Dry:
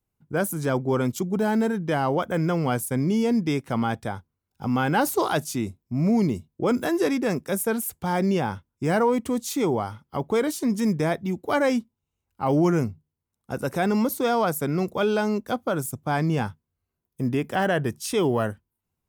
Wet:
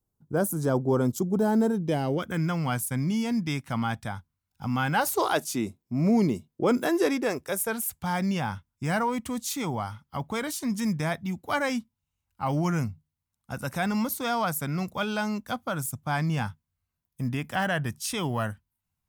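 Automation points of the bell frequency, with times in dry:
bell -14 dB 1.1 oct
1.66 s 2400 Hz
2.51 s 420 Hz
4.88 s 420 Hz
5.68 s 64 Hz
6.68 s 64 Hz
7.88 s 400 Hz

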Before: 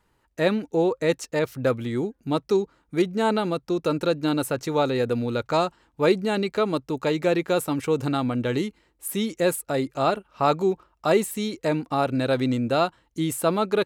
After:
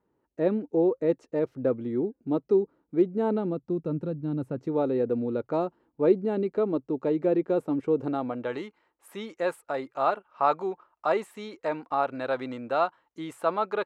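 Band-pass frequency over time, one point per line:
band-pass, Q 1.1
3.25 s 340 Hz
4.25 s 120 Hz
4.82 s 340 Hz
7.91 s 340 Hz
8.58 s 1000 Hz

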